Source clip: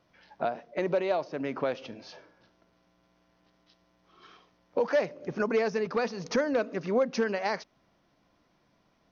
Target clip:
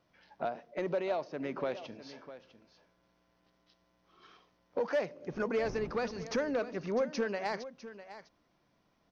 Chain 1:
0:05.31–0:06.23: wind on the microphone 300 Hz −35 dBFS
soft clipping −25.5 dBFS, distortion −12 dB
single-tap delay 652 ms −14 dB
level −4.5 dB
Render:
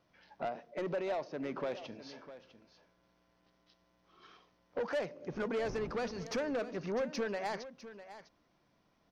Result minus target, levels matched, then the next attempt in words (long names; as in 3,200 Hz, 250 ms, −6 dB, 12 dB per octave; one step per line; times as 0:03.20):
soft clipping: distortion +12 dB
0:05.31–0:06.23: wind on the microphone 300 Hz −35 dBFS
soft clipping −17 dBFS, distortion −24 dB
single-tap delay 652 ms −14 dB
level −4.5 dB